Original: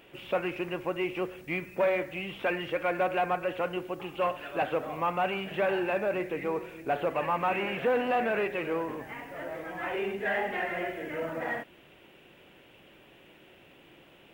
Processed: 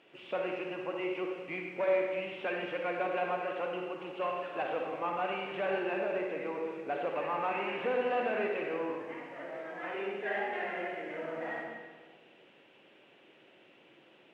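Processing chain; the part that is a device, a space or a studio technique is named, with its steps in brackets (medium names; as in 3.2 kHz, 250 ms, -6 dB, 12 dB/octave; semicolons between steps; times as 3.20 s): supermarket ceiling speaker (band-pass 200–5700 Hz; reverberation RT60 1.5 s, pre-delay 45 ms, DRR 1.5 dB); trim -6.5 dB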